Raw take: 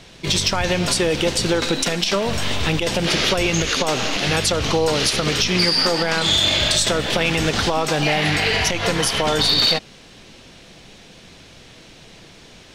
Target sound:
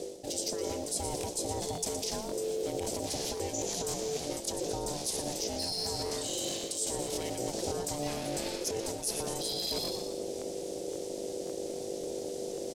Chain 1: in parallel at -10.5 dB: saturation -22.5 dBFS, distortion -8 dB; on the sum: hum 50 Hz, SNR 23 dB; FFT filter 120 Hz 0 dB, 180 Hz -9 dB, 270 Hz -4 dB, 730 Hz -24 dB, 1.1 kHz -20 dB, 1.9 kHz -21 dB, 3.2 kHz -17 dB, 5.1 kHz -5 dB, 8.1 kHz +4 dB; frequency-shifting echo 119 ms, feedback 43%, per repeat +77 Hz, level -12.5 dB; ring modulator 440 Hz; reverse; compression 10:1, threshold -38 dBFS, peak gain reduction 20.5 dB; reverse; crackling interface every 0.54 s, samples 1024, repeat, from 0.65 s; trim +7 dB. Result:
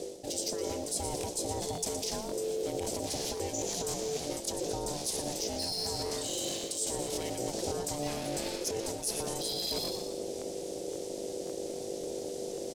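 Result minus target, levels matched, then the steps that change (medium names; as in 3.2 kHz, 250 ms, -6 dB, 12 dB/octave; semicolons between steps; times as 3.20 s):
saturation: distortion +11 dB
change: saturation -11.5 dBFS, distortion -19 dB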